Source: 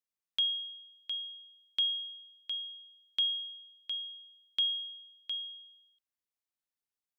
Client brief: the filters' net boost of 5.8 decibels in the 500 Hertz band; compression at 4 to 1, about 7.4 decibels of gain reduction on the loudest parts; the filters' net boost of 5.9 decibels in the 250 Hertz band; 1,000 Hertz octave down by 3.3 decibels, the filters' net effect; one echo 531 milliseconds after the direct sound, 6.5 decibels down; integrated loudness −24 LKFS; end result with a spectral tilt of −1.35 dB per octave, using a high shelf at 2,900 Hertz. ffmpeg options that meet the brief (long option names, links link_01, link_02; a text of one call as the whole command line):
ffmpeg -i in.wav -af "equalizer=frequency=250:width_type=o:gain=5.5,equalizer=frequency=500:width_type=o:gain=7.5,equalizer=frequency=1000:width_type=o:gain=-7.5,highshelf=frequency=2900:gain=4,acompressor=threshold=-33dB:ratio=4,aecho=1:1:531:0.473,volume=12.5dB" out.wav